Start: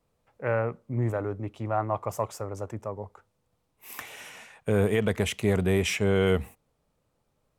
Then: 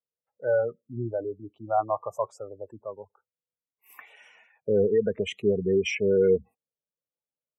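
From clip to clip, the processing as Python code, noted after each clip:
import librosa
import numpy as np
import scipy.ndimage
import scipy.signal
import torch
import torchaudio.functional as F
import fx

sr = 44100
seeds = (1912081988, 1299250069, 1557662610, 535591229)

y = fx.spec_gate(x, sr, threshold_db=-15, keep='strong')
y = fx.highpass(y, sr, hz=360.0, slope=6)
y = fx.spectral_expand(y, sr, expansion=1.5)
y = F.gain(torch.from_numpy(y), 4.0).numpy()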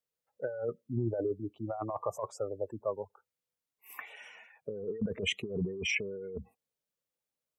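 y = fx.over_compress(x, sr, threshold_db=-32.0, ratio=-1.0)
y = F.gain(torch.from_numpy(y), -3.0).numpy()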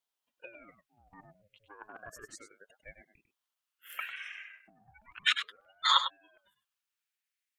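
y = fx.highpass_res(x, sr, hz=2000.0, q=2.9)
y = y + 10.0 ** (-10.0 / 20.0) * np.pad(y, (int(99 * sr / 1000.0), 0))[:len(y)]
y = fx.ring_lfo(y, sr, carrier_hz=690.0, swing_pct=70, hz=0.33)
y = F.gain(torch.from_numpy(y), 3.0).numpy()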